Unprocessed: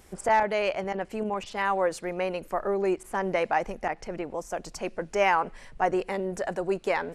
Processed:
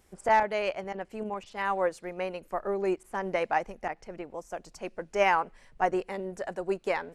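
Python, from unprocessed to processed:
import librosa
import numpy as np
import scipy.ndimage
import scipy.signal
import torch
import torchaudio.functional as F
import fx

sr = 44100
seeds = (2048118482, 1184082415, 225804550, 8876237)

y = fx.upward_expand(x, sr, threshold_db=-38.0, expansion=1.5)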